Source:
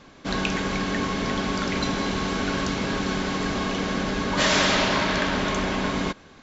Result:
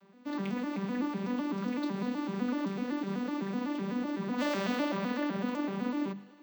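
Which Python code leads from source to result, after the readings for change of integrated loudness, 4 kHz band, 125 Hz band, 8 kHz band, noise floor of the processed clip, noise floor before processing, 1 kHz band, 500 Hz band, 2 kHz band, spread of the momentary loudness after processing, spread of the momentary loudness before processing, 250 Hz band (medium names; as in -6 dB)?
-9.0 dB, -19.0 dB, -11.0 dB, no reading, -56 dBFS, -49 dBFS, -12.0 dB, -9.5 dB, -15.5 dB, 3 LU, 6 LU, -4.5 dB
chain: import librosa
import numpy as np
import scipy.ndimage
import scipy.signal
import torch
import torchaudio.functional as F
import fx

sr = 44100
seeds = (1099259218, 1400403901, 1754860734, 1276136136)

p1 = fx.vocoder_arp(x, sr, chord='major triad', root=55, every_ms=126)
p2 = fx.hum_notches(p1, sr, base_hz=50, count=4)
p3 = p2 + fx.echo_thinned(p2, sr, ms=106, feedback_pct=76, hz=420.0, wet_db=-20.5, dry=0)
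p4 = np.repeat(scipy.signal.resample_poly(p3, 1, 2), 2)[:len(p3)]
y = p4 * 10.0 ** (-6.5 / 20.0)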